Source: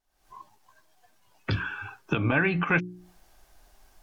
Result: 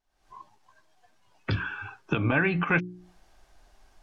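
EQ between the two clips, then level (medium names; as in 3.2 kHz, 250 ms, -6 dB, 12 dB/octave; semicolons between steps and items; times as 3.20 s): distance through air 51 m; 0.0 dB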